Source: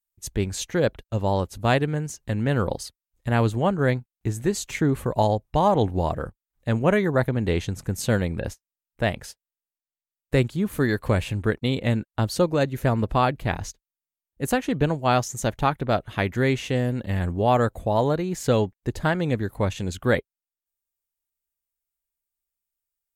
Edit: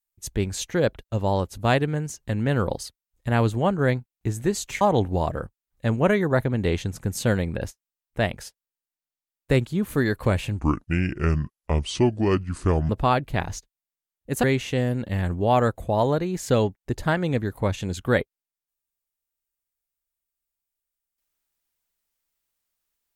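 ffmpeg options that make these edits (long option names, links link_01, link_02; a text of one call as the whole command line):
ffmpeg -i in.wav -filter_complex "[0:a]asplit=5[link_01][link_02][link_03][link_04][link_05];[link_01]atrim=end=4.812[link_06];[link_02]atrim=start=5.638:end=11.424[link_07];[link_03]atrim=start=11.42:end=13.01,asetpts=PTS-STARTPTS,asetrate=30429,aresample=44100[link_08];[link_04]atrim=start=13.006:end=14.552[link_09];[link_05]atrim=start=16.408[link_10];[link_06][link_07]acrossfade=duration=0.004:curve1=hsin:curve2=hsin[link_11];[link_11][link_08]acrossfade=duration=0.004:curve1=hsin:curve2=hsin[link_12];[link_12][link_09]acrossfade=duration=0.004:curve1=hsin:curve2=hsin[link_13];[link_13][link_10]acrossfade=duration=0.004:curve1=hsin:curve2=hsin" out.wav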